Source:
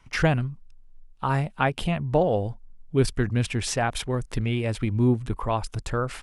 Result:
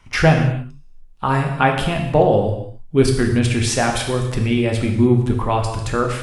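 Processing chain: gated-style reverb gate 320 ms falling, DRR 1.5 dB; trim +5.5 dB

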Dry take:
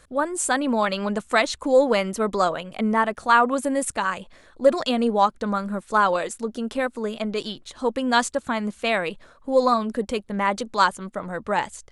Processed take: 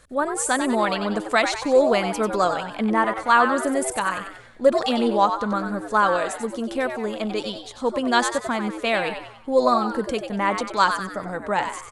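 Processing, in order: frequency-shifting echo 94 ms, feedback 44%, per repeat +110 Hz, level -8 dB

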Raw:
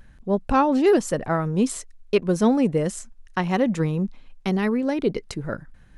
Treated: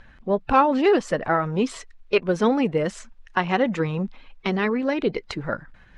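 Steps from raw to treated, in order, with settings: coarse spectral quantiser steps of 15 dB; low-pass 3.4 kHz 12 dB/octave; bass shelf 480 Hz -11 dB; in parallel at -3 dB: compression, threshold -34 dBFS, peak gain reduction 16 dB; on the sum: trim +4.5 dB

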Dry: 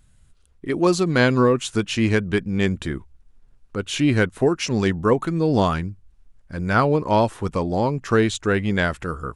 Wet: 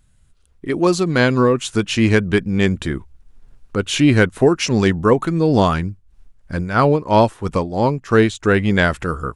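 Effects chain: 5.87–8.43 s: tremolo 3 Hz, depth 68%; level rider gain up to 11.5 dB; trim -1 dB

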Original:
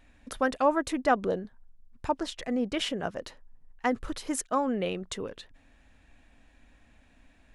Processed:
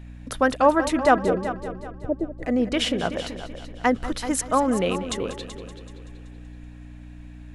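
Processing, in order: hum 60 Hz, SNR 15 dB; 1.17–2.43 s: steep low-pass 630 Hz 48 dB/octave; multi-head delay 190 ms, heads first and second, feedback 42%, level -14 dB; trim +6.5 dB

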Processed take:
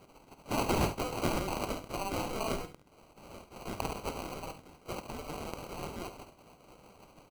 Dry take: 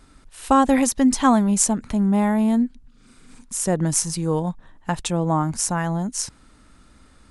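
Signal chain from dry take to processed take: spectral gate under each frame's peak -30 dB weak; sample-and-hold 25×; early reflections 50 ms -12 dB, 70 ms -12.5 dB; trim +9 dB

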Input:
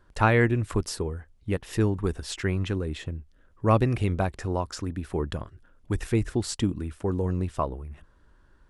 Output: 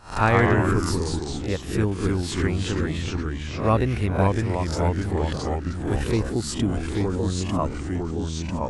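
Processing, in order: reverse spectral sustain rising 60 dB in 0.37 s; ever faster or slower copies 89 ms, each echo -2 st, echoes 3

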